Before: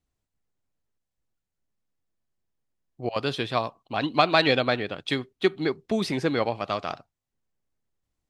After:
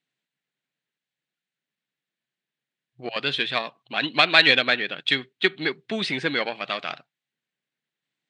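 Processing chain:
harmonic generator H 8 −28 dB, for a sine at −4.5 dBFS
flat-topped bell 2,500 Hz +12 dB
brick-wall band-pass 120–9,400 Hz
level −3 dB

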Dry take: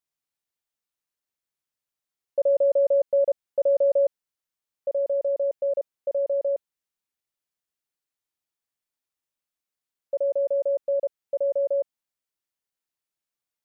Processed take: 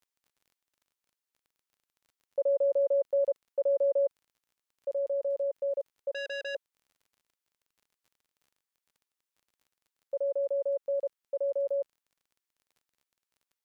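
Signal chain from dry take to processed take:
high-pass filter 340 Hz 12 dB per octave
parametric band 640 Hz −10.5 dB 0.28 octaves
surface crackle 32 per second −52 dBFS
0:06.14–0:06.55: saturating transformer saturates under 1,900 Hz
level −1.5 dB

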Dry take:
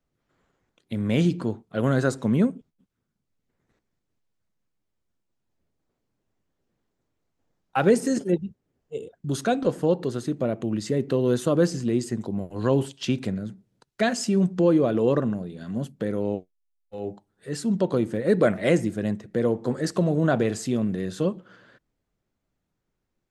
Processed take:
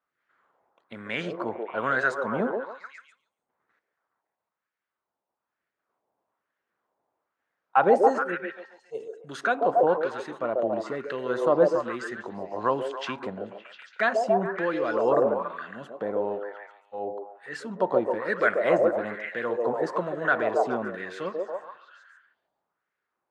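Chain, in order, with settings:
echo through a band-pass that steps 140 ms, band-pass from 480 Hz, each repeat 0.7 octaves, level −0.5 dB
auto-filter band-pass sine 1.1 Hz 810–1,700 Hz
level +9 dB

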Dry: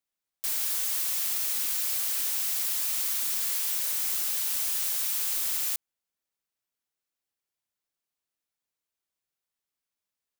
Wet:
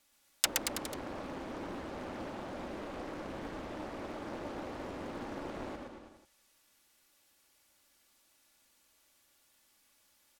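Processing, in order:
treble cut that deepens with the level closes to 390 Hz, closed at −29 dBFS
comb filter 3.5 ms, depth 46%
bouncing-ball delay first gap 120 ms, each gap 0.9×, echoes 5
highs frequency-modulated by the lows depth 0.82 ms
level +17.5 dB

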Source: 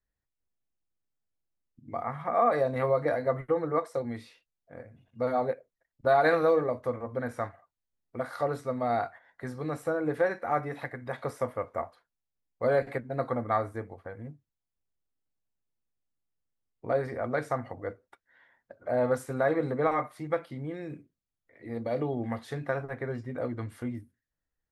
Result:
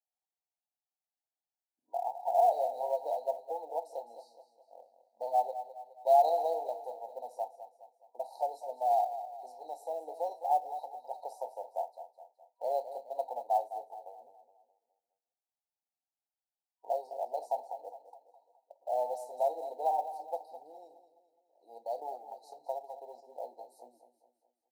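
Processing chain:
brick-wall band-stop 960–3,800 Hz
0:22.15–0:22.60: downward compressor 8 to 1, threshold −35 dBFS, peak gain reduction 7.5 dB
four-pole ladder high-pass 680 Hz, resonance 65%
floating-point word with a short mantissa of 4 bits
repeating echo 209 ms, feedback 46%, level −12 dB
level +3 dB

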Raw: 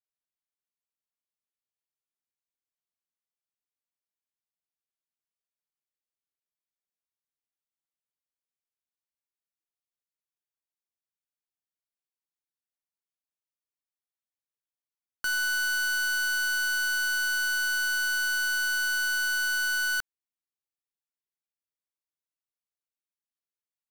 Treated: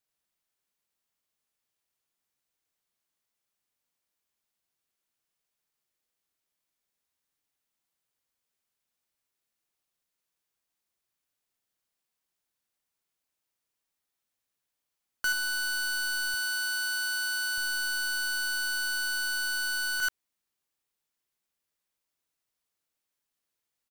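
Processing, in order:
single-tap delay 83 ms −4.5 dB
brickwall limiter −34.5 dBFS, peak gain reduction 11.5 dB
0:16.34–0:17.58: high-pass filter 240 Hz 6 dB per octave
level +8.5 dB

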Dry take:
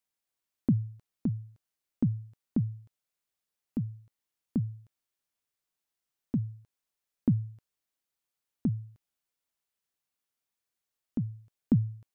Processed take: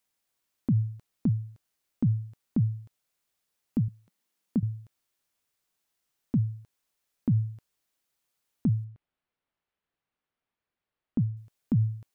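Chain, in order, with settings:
0:03.88–0:04.63: low shelf with overshoot 150 Hz −7.5 dB, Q 3
brickwall limiter −25.5 dBFS, peak gain reduction 10.5 dB
0:08.84–0:11.37: high-frequency loss of the air 360 metres
level +7 dB

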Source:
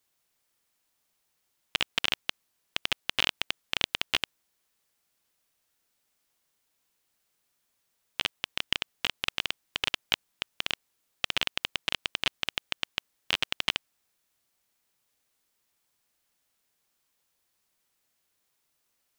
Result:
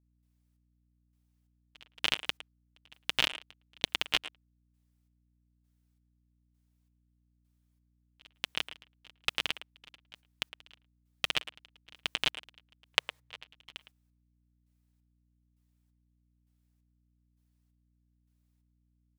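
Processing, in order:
gate pattern "..xxx..." 133 BPM −24 dB
comb filter 6.5 ms, depth 35%
far-end echo of a speakerphone 110 ms, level −11 dB
noise gate −57 dBFS, range −11 dB
mains hum 60 Hz, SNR 30 dB
0:12.93–0:13.43: octave-band graphic EQ 125/250/500/1,000/2,000/4,000/8,000 Hz +6/−8/+12/+8/+7/+4/+4 dB
level −1.5 dB

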